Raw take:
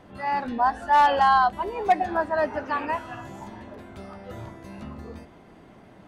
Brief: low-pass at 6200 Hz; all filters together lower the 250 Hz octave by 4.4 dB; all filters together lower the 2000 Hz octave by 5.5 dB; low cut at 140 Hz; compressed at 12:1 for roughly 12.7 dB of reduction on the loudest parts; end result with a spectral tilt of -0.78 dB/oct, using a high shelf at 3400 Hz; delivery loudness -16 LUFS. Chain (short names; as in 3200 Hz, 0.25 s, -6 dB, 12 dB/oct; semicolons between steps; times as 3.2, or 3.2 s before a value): HPF 140 Hz; LPF 6200 Hz; bell 250 Hz -5 dB; bell 2000 Hz -6 dB; high shelf 3400 Hz -5 dB; compressor 12:1, threshold -28 dBFS; gain +19 dB